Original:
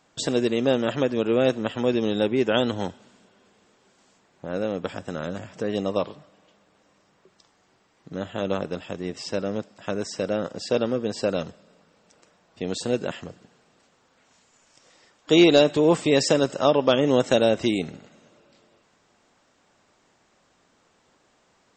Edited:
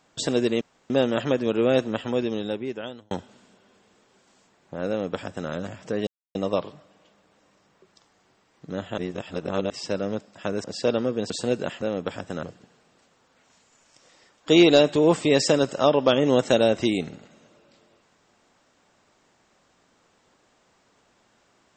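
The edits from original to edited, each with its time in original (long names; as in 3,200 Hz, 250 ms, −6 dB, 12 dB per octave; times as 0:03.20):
0:00.61: splice in room tone 0.29 s
0:01.58–0:02.82: fade out
0:04.60–0:05.21: duplicate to 0:13.24
0:05.78: splice in silence 0.28 s
0:08.41–0:09.13: reverse
0:10.07–0:10.51: remove
0:11.17–0:12.72: remove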